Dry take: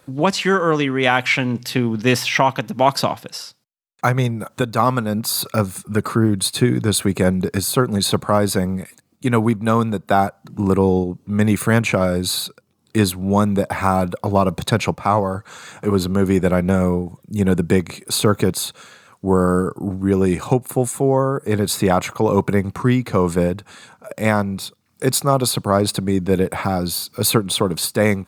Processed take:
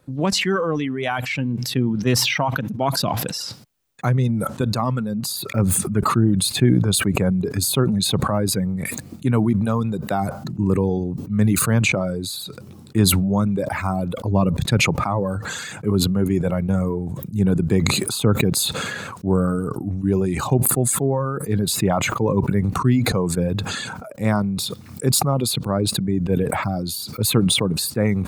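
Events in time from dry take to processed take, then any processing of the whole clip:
4.05–5.37 Bessel low-pass 12000 Hz
14.3–14.71 tone controls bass +3 dB, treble -2 dB
whole clip: reverb removal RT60 2 s; low shelf 360 Hz +11.5 dB; sustainer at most 26 dB/s; gain -9.5 dB

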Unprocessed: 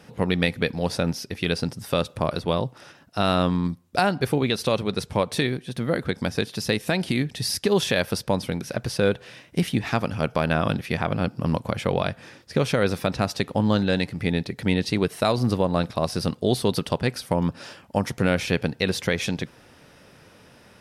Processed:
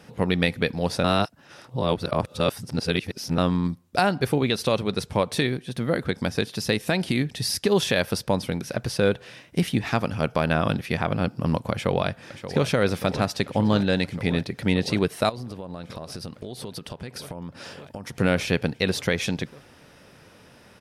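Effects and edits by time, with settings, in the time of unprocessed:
1.04–3.38 reverse
11.72–12.66 echo throw 0.58 s, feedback 85%, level -11.5 dB
15.29–18.16 compressor 12:1, threshold -31 dBFS

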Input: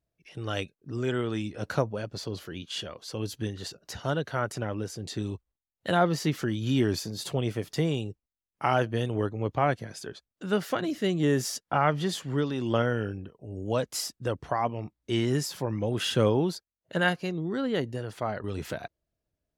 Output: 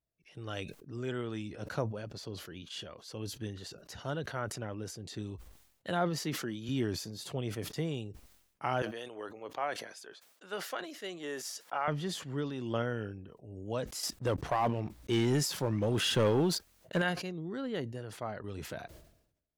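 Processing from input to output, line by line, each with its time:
6.18–6.69 HPF 160 Hz
8.82–11.88 HPF 530 Hz
14.03–17.02 sample leveller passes 2
whole clip: sustainer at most 76 dB/s; gain -8 dB

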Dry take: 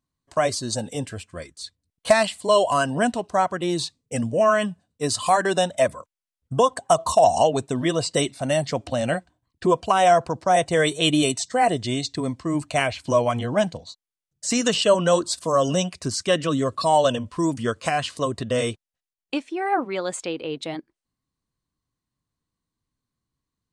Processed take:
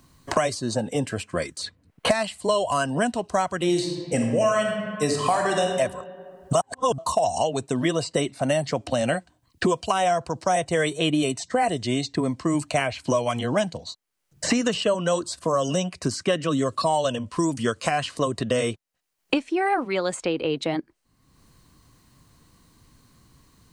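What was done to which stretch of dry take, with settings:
3.57–5.66 reverb throw, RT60 1.1 s, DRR 1 dB
6.53–6.98 reverse
whole clip: notch 3500 Hz, Q 20; three-band squash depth 100%; gain -3 dB

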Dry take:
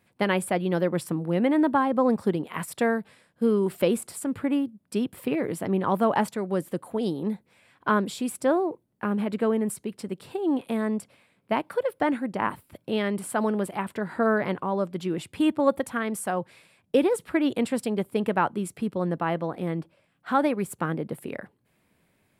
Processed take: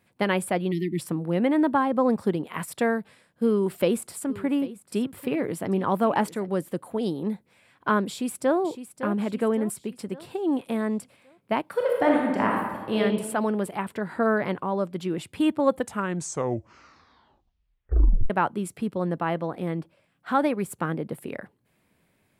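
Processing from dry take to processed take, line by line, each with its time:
0.71–0.99 spectral delete 390–1800 Hz
3.5–6.49 echo 0.793 s -17 dB
8.08–8.57 echo throw 0.56 s, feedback 50%, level -11 dB
11.71–12.99 reverb throw, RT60 1.3 s, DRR -2 dB
15.64 tape stop 2.66 s

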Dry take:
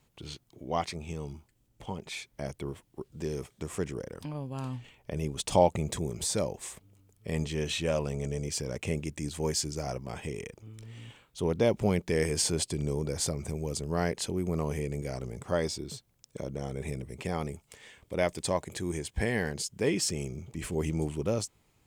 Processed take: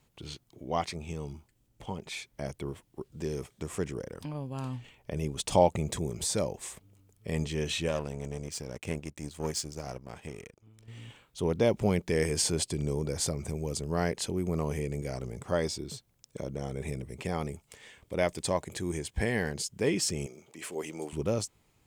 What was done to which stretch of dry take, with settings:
7.88–10.88 power-law curve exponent 1.4
20.26–21.13 HPF 420 Hz

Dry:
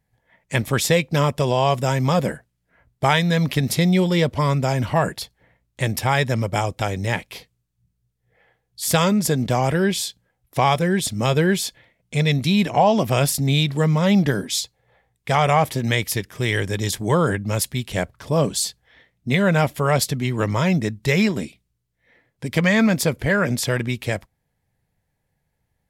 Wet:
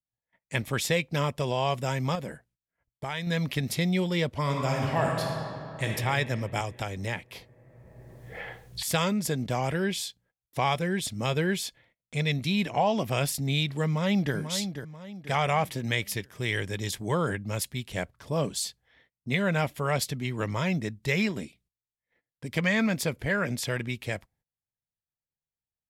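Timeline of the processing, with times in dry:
2.15–3.27 compressor 2.5:1, threshold -24 dBFS
4.41–5.88 reverb throw, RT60 2.9 s, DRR -0.5 dB
6.6–8.83 three-band squash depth 100%
13.85–14.35 echo throw 0.49 s, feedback 40%, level -8.5 dB
whole clip: gate -55 dBFS, range -20 dB; dynamic EQ 2500 Hz, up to +4 dB, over -34 dBFS, Q 1.1; gain -9 dB

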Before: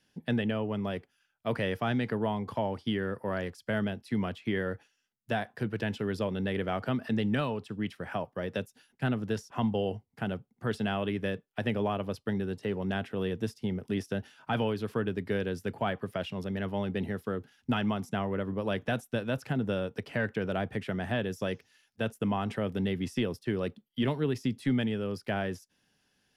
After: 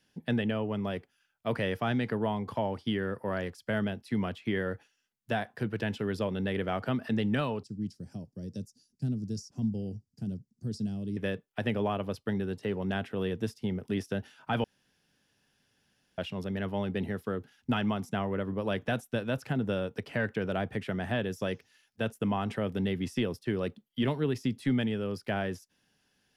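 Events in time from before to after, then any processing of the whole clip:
7.63–11.17 EQ curve 200 Hz 0 dB, 320 Hz -5 dB, 510 Hz -15 dB, 1100 Hz -29 dB, 2100 Hz -26 dB, 3400 Hz -19 dB, 4800 Hz +5 dB, 7000 Hz +3 dB, 13000 Hz -9 dB
14.64–16.18 room tone

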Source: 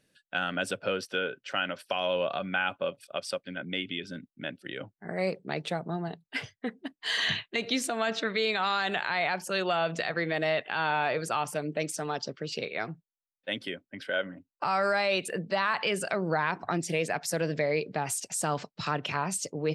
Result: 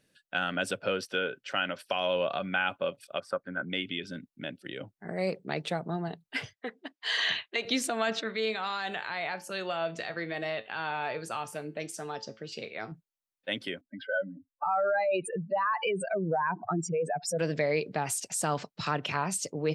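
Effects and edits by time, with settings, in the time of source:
3.2–3.7 resonant high shelf 2000 Hz -12.5 dB, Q 3
4.32–5.29 dynamic EQ 1400 Hz, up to -5 dB, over -46 dBFS, Q 0.86
6.53–7.65 three-band isolator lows -17 dB, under 320 Hz, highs -16 dB, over 7400 Hz
8.21–12.92 resonator 110 Hz, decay 0.28 s
13.81–17.39 spectral contrast raised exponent 2.7

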